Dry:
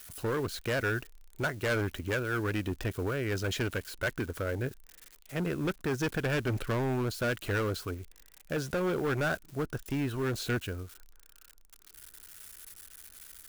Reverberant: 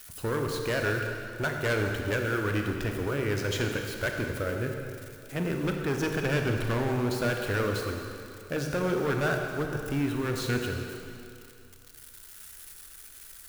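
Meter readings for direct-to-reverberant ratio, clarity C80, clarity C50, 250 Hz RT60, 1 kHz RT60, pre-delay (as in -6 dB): 2.5 dB, 4.0 dB, 3.5 dB, 2.3 s, 2.5 s, 28 ms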